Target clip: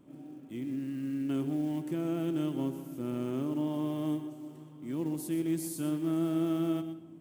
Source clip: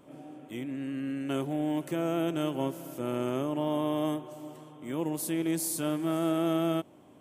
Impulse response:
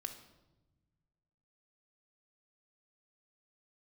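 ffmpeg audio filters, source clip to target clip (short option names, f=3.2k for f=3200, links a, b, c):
-filter_complex "[0:a]lowshelf=f=400:t=q:w=1.5:g=7,acrusher=bits=8:mode=log:mix=0:aa=0.000001,asplit=2[a][b];[1:a]atrim=start_sample=2205,adelay=124[c];[b][c]afir=irnorm=-1:irlink=0,volume=-8dB[d];[a][d]amix=inputs=2:normalize=0,volume=-8.5dB"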